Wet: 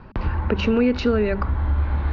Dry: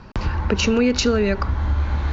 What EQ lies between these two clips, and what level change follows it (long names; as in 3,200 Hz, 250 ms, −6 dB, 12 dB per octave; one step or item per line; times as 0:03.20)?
high-frequency loss of the air 330 metres
mains-hum notches 50/100/150/200 Hz
0.0 dB